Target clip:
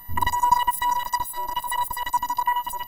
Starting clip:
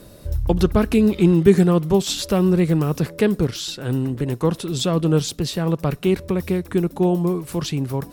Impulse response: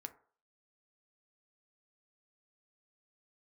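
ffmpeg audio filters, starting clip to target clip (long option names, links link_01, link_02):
-af "afftfilt=real='hypot(re,im)*cos(PI*b)':imag='0':win_size=512:overlap=0.75,asetrate=124803,aresample=44100,aeval=exprs='val(0)+0.00794*sin(2*PI*14000*n/s)':channel_layout=same"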